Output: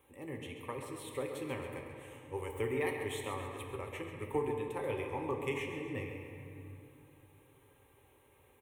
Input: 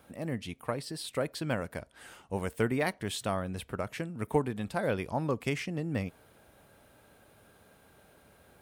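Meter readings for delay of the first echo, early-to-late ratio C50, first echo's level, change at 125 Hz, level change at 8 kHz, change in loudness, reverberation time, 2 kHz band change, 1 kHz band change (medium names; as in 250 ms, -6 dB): 135 ms, 3.0 dB, -9.5 dB, -8.0 dB, -7.0 dB, -5.5 dB, 2.8 s, -5.0 dB, -5.0 dB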